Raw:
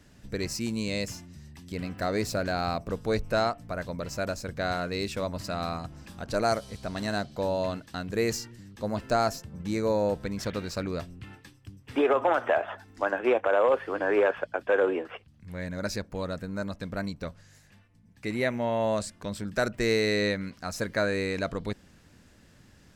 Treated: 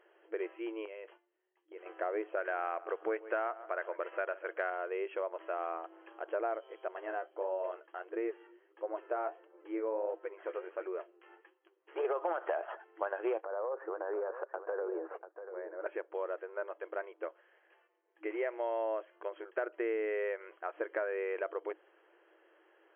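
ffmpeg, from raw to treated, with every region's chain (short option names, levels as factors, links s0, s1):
-filter_complex "[0:a]asettb=1/sr,asplit=3[s0][s1][s2];[s0]atrim=end=0.854[s3];[s1]atrim=start=0.85:end=1.86,asetpts=PTS-STARTPTS,afade=t=in:d=0.004:c=qsin,afade=t=out:st=1.006:d=0.004:c=qsin,agate=range=0.112:threshold=0.01:ratio=16:release=100:detection=peak,acompressor=threshold=0.0126:ratio=4:attack=3.2:release=140:knee=1:detection=peak,asplit=2[s4][s5];[s5]adelay=19,volume=0.266[s6];[s4][s6]amix=inputs=2:normalize=0,atrim=end_sample=44541[s7];[s2]atrim=start=1.856[s8];[s3][s7]acrossfade=d=0.004:c1=hsin:c2=qsin[s9];[s9][s8]acrossfade=d=0.004:c1=qsin:c2=hsin,asettb=1/sr,asplit=3[s10][s11][s12];[s10]atrim=end=2.374[s13];[s11]atrim=start=2.37:end=4.7,asetpts=PTS-STARTPTS,afade=t=in:d=0.004:c=qsin,afade=t=out:st=2.326:d=0.004:c=qsin,equalizer=f=1800:t=o:w=1.6:g=8,asplit=2[s14][s15];[s15]adelay=138,lowpass=f=2000:p=1,volume=0.112,asplit=2[s16][s17];[s17]adelay=138,lowpass=f=2000:p=1,volume=0.35,asplit=2[s18][s19];[s19]adelay=138,lowpass=f=2000:p=1,volume=0.35[s20];[s14][s16][s18][s20]amix=inputs=4:normalize=0,atrim=end_sample=102753[s21];[s12]atrim=start=4.696[s22];[s13][s21]acrossfade=d=0.004:c1=hsin:c2=qsin[s23];[s23][s22]acrossfade=d=0.004:c1=qsin:c2=hsin,asettb=1/sr,asplit=3[s24][s25][s26];[s24]atrim=end=6.884[s27];[s25]atrim=start=6.88:end=12.05,asetpts=PTS-STARTPTS,afade=t=in:d=0.004:c=qsin,afade=t=out:st=5.166:d=0.004:c=qsin,bass=f=250:g=3,treble=f=4000:g=-10,flanger=delay=5.4:depth=8.7:regen=44:speed=1.5:shape=sinusoidal[s28];[s26]atrim=start=12.046[s29];[s27][s28]acrossfade=d=0.004:c1=hsin:c2=qsin[s30];[s30][s29]acrossfade=d=0.004:c1=qsin:c2=hsin,asettb=1/sr,asplit=3[s31][s32][s33];[s31]atrim=end=13.444[s34];[s32]atrim=start=13.44:end=15.86,asetpts=PTS-STARTPTS,afade=t=in:d=0.004:c=qsin,afade=t=out:st=2.416:d=0.004:c=qsin,lowpass=f=1500:w=0.5412,lowpass=f=1500:w=1.3066,acompressor=threshold=0.0251:ratio=5:attack=3.2:release=140:knee=1:detection=peak,aecho=1:1:690:0.266,atrim=end_sample=106722[s35];[s33]atrim=start=15.856[s36];[s34][s35]acrossfade=d=0.004:c1=hsin:c2=qsin[s37];[s37][s36]acrossfade=d=0.004:c1=qsin:c2=hsin,afftfilt=real='re*between(b*sr/4096,320,3300)':imag='im*between(b*sr/4096,320,3300)':win_size=4096:overlap=0.75,equalizer=f=2600:t=o:w=1.2:g=-8.5,acompressor=threshold=0.0251:ratio=4"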